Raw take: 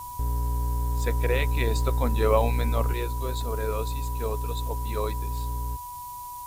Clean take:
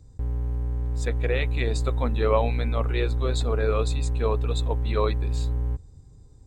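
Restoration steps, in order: band-stop 980 Hz, Q 30; noise print and reduce 9 dB; trim 0 dB, from 2.93 s +5.5 dB

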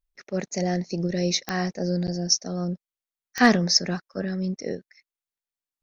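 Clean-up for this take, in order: clip repair -6 dBFS; de-click

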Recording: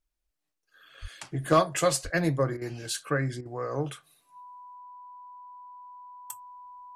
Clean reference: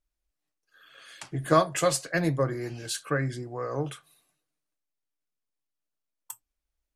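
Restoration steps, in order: clip repair -11 dBFS; band-stop 990 Hz, Q 30; de-plosive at 1.01/2.03 s; interpolate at 2.57/3.41 s, 44 ms

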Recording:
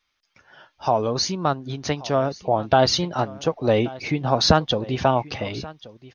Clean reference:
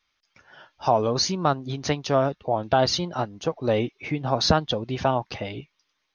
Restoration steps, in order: inverse comb 1130 ms -19.5 dB; gain correction -3.5 dB, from 2.43 s

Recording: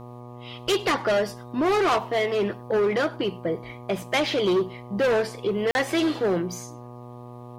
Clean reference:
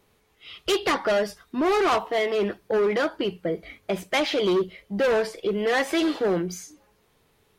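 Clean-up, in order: de-hum 121.8 Hz, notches 10; interpolate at 5.71 s, 41 ms; inverse comb 101 ms -24 dB

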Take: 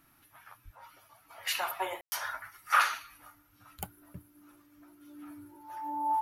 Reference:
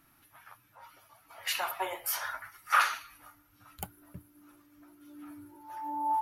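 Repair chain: 0.64–0.76 s: high-pass 140 Hz 24 dB/octave; room tone fill 2.01–2.12 s

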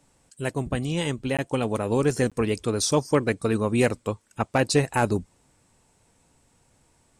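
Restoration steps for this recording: clip repair -9 dBFS; interpolate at 1.37/2.30 s, 16 ms

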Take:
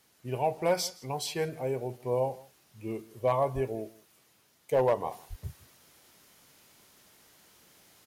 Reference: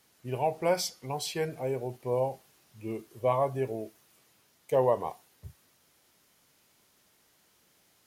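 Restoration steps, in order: clip repair -18 dBFS; de-plosive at 3.54/5.29 s; inverse comb 164 ms -22 dB; trim 0 dB, from 5.12 s -6.5 dB

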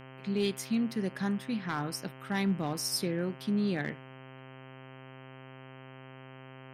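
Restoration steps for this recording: clip repair -22.5 dBFS; de-hum 131.4 Hz, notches 24

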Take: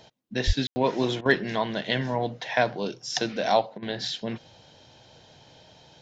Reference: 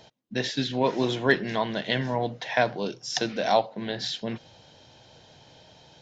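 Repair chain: de-plosive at 0.46 s; room tone fill 0.67–0.76 s; interpolate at 1.21/3.78 s, 44 ms

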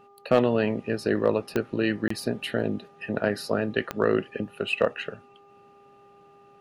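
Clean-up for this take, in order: clip repair -9.5 dBFS; de-click; de-hum 401.9 Hz, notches 3; interpolate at 2.08 s, 24 ms

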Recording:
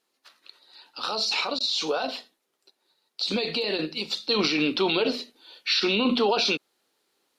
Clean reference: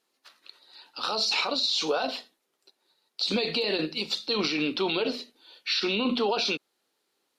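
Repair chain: interpolate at 1.59 s, 12 ms; trim 0 dB, from 4.29 s -3.5 dB

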